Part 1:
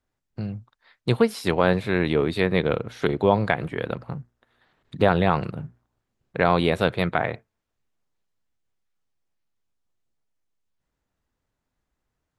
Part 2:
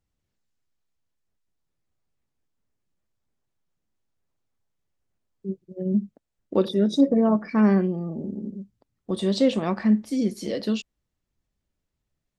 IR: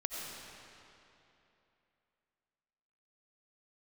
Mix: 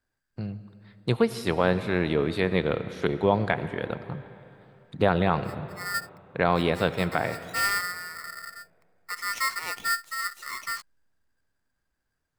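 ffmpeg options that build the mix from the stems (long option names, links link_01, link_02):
-filter_complex "[0:a]volume=-5dB,asplit=3[link_01][link_02][link_03];[link_02]volume=-11dB[link_04];[1:a]aeval=exprs='val(0)*sgn(sin(2*PI*1600*n/s))':channel_layout=same,volume=-8dB[link_05];[link_03]apad=whole_len=546133[link_06];[link_05][link_06]sidechaincompress=threshold=-48dB:ratio=4:attack=32:release=128[link_07];[2:a]atrim=start_sample=2205[link_08];[link_04][link_08]afir=irnorm=-1:irlink=0[link_09];[link_01][link_07][link_09]amix=inputs=3:normalize=0"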